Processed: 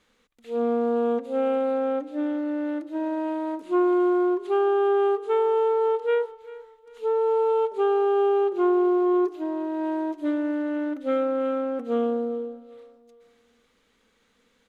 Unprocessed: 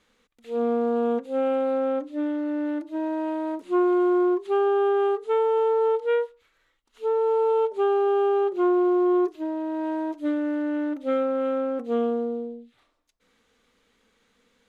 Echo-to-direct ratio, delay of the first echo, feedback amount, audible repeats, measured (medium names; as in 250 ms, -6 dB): -18.0 dB, 393 ms, 37%, 2